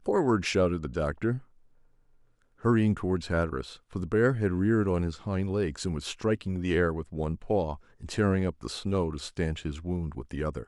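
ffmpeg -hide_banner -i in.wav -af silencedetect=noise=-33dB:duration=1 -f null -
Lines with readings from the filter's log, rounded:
silence_start: 1.38
silence_end: 2.65 | silence_duration: 1.27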